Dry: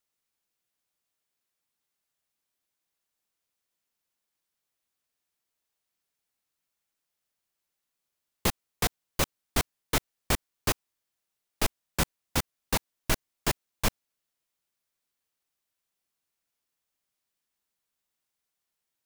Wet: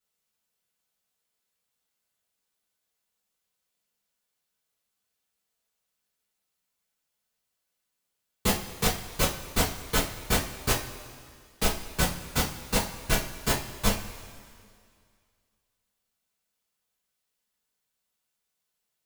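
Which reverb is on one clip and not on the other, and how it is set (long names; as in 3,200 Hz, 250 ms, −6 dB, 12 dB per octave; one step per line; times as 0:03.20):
coupled-rooms reverb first 0.29 s, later 2.2 s, from −18 dB, DRR −9 dB
level −7 dB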